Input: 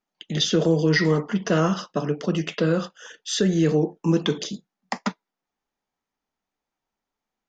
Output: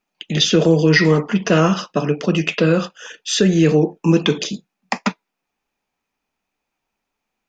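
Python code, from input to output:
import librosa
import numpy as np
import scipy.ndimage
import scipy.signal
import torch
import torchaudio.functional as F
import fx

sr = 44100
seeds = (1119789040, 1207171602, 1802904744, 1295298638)

y = fx.peak_eq(x, sr, hz=2500.0, db=11.0, octaves=0.21)
y = F.gain(torch.from_numpy(y), 6.0).numpy()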